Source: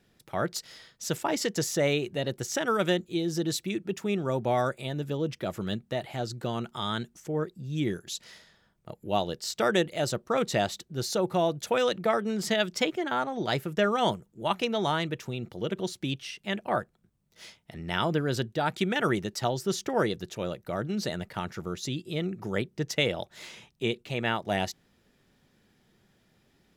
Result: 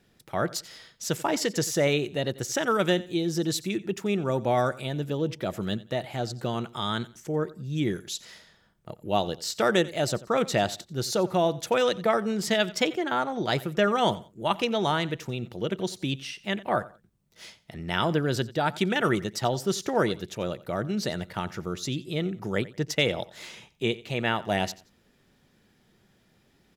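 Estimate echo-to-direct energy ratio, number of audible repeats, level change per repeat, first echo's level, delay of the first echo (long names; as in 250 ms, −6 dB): −18.5 dB, 2, −11.5 dB, −19.0 dB, 89 ms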